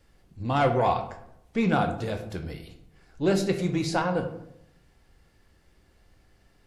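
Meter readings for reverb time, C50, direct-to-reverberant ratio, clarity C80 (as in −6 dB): 0.75 s, 10.0 dB, 5.0 dB, 12.5 dB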